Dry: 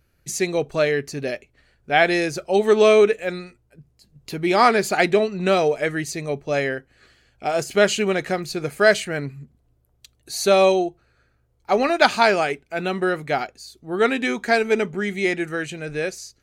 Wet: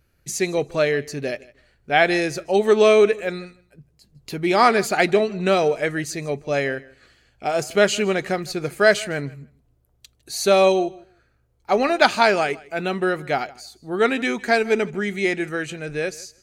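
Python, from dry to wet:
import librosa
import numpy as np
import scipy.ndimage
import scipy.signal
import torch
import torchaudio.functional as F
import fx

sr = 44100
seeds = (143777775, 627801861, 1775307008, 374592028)

y = fx.echo_feedback(x, sr, ms=157, feedback_pct=16, wet_db=-22.0)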